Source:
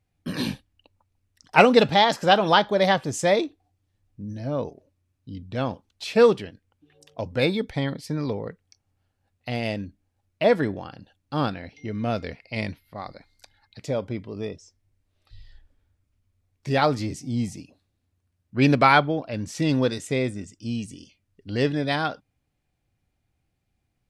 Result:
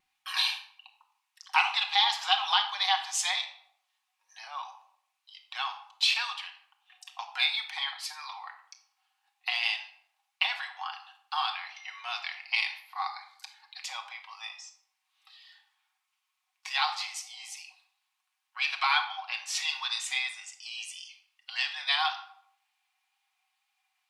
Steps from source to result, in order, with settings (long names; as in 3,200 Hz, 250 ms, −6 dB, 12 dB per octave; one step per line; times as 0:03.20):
dynamic equaliser 3,800 Hz, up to +7 dB, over −42 dBFS, Q 1
downward compressor 4 to 1, threshold −29 dBFS, peak gain reduction 17.5 dB
Chebyshev high-pass with heavy ripple 760 Hz, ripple 6 dB
tape wow and flutter 29 cents
on a send: convolution reverb RT60 0.70 s, pre-delay 5 ms, DRR 3 dB
on the sum: level +8 dB